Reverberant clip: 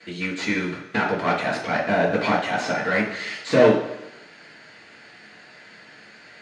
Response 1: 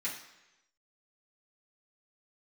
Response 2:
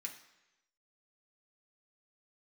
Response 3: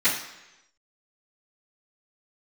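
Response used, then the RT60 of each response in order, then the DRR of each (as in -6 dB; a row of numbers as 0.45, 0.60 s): 3; 1.0, 1.0, 1.0 s; -9.0, 0.0, -18.0 dB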